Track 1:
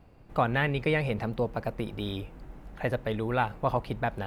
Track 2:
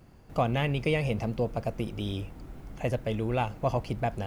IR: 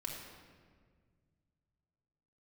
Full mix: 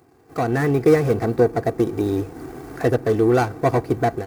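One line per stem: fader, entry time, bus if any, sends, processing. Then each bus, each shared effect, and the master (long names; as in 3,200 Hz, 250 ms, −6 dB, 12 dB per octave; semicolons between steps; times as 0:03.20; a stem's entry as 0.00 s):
−6.5 dB, 0.00 s, no send, phaser with its sweep stopped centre 1,300 Hz, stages 4
+2.0 dB, 0.00 s, no send, running median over 41 samples; parametric band 2,900 Hz −10 dB 1.5 octaves; comb filter 2.6 ms, depth 89%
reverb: not used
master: high-pass filter 180 Hz 12 dB per octave; automatic gain control gain up to 11.5 dB; one half of a high-frequency compander encoder only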